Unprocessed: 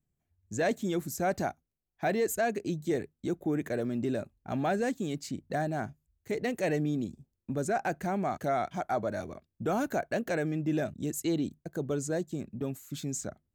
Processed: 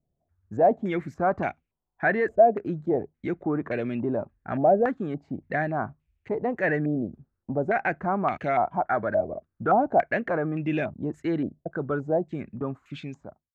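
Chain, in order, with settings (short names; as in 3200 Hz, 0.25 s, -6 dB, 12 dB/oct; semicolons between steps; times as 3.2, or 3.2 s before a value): ending faded out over 0.74 s; stepped low-pass 3.5 Hz 640–2500 Hz; gain +2.5 dB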